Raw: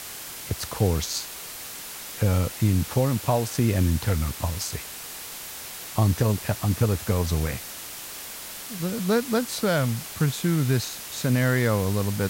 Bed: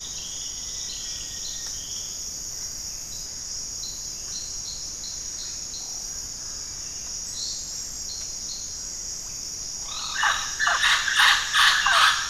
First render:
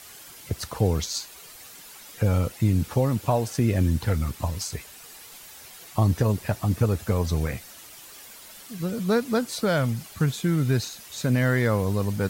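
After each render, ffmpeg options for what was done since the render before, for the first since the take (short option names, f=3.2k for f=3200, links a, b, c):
-af "afftdn=nr=10:nf=-38"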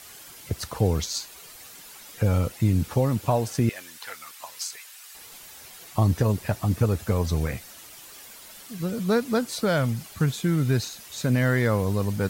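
-filter_complex "[0:a]asettb=1/sr,asplit=3[a][b][c];[a]atrim=end=3.694[d];[b]atrim=start=3.69:end=5.15,asetpts=PTS-STARTPTS,afade=t=in:d=0.004:c=qsin,afade=t=out:st=1.456:d=0.004:c=qsin,highpass=1.2k[e];[c]atrim=start=5.146[f];[d][e]acrossfade=d=0.004:c1=hsin:c2=qsin[g];[g][f]acrossfade=d=0.004:c1=qsin:c2=hsin"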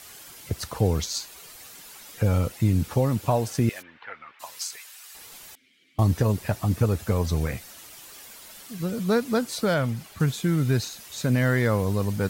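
-filter_complex "[0:a]asplit=3[a][b][c];[a]afade=t=out:st=3.81:d=0.02[d];[b]lowpass=f=2.5k:w=0.5412,lowpass=f=2.5k:w=1.3066,afade=t=in:st=3.81:d=0.02,afade=t=out:st=4.39:d=0.02[e];[c]afade=t=in:st=4.39:d=0.02[f];[d][e][f]amix=inputs=3:normalize=0,asettb=1/sr,asplit=3[g][h][i];[g]atrim=end=5.554[j];[h]atrim=start=5.55:end=5.99,asetpts=PTS-STARTPTS,afade=t=in:d=0.004:c=qsin,afade=t=out:st=0.436:d=0.004:c=qsin,asplit=3[k][l][m];[k]bandpass=f=270:t=q:w=8,volume=0dB[n];[l]bandpass=f=2.29k:t=q:w=8,volume=-6dB[o];[m]bandpass=f=3.01k:t=q:w=8,volume=-9dB[p];[n][o][p]amix=inputs=3:normalize=0[q];[i]atrim=start=5.986[r];[j][q]acrossfade=d=0.004:c1=hsin:c2=qsin[s];[s][r]acrossfade=d=0.004:c1=qsin:c2=hsin,asettb=1/sr,asplit=3[t][u][v];[t]atrim=end=9.744[w];[u]atrim=start=9.74:end=10.2,asetpts=PTS-STARTPTS,afade=t=in:d=0.004:c=qsin,afade=t=out:st=0.456:d=0.004:c=qsin,bass=f=250:g=-2,treble=f=4k:g=-5[x];[v]atrim=start=10.196[y];[w][x]acrossfade=d=0.004:c1=hsin:c2=qsin[z];[z][y]acrossfade=d=0.004:c1=qsin:c2=hsin"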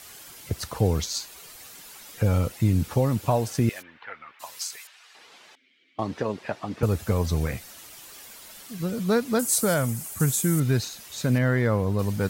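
-filter_complex "[0:a]asettb=1/sr,asplit=3[a][b][c];[a]atrim=end=4.874[d];[b]atrim=start=4.87:end=6.83,asetpts=PTS-STARTPTS,afade=t=in:d=0.004:c=qsin,afade=t=out:st=1.956:d=0.004:c=qsin,highpass=280,lowpass=3.8k[e];[c]atrim=start=6.826[f];[d][e]acrossfade=d=0.004:c1=hsin:c2=qsin[g];[g][f]acrossfade=d=0.004:c1=qsin:c2=hsin,asettb=1/sr,asplit=3[h][i][j];[h]atrim=end=9.394[k];[i]atrim=start=9.39:end=10.6,asetpts=PTS-STARTPTS,afade=t=in:d=0.004:c=qsin,afade=t=out:st=1.206:d=0.004:c=qsin,highshelf=f=5.8k:t=q:w=1.5:g=13[l];[j]atrim=start=10.596[m];[k][l]acrossfade=d=0.004:c1=hsin:c2=qsin[n];[n][m]acrossfade=d=0.004:c1=qsin:c2=hsin,asettb=1/sr,asplit=3[o][p][q];[o]atrim=end=11.384[r];[p]atrim=start=11.38:end=11.99,asetpts=PTS-STARTPTS,afade=t=in:d=0.004:c=qsin,afade=t=out:st=0.606:d=0.004:c=qsin,highshelf=f=3.4k:g=-10.5[s];[q]atrim=start=11.986[t];[r][s]acrossfade=d=0.004:c1=hsin:c2=qsin[u];[u][t]acrossfade=d=0.004:c1=qsin:c2=hsin"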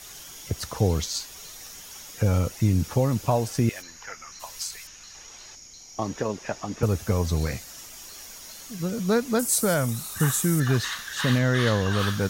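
-filter_complex "[1:a]volume=-13dB[a];[0:a][a]amix=inputs=2:normalize=0"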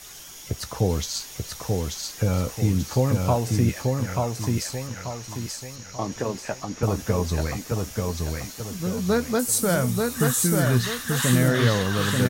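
-filter_complex "[0:a]asplit=2[a][b];[b]adelay=16,volume=-12dB[c];[a][c]amix=inputs=2:normalize=0,aecho=1:1:886|1772|2658|3544|4430:0.708|0.283|0.113|0.0453|0.0181"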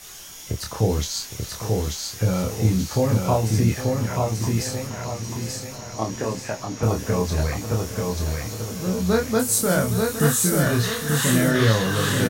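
-filter_complex "[0:a]asplit=2[a][b];[b]adelay=27,volume=-3dB[c];[a][c]amix=inputs=2:normalize=0,aecho=1:1:812|1624|2436|3248|4060|4872:0.224|0.13|0.0753|0.0437|0.0253|0.0147"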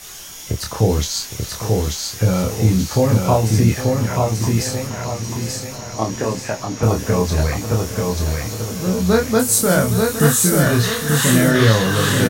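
-af "volume=5dB,alimiter=limit=-2dB:level=0:latency=1"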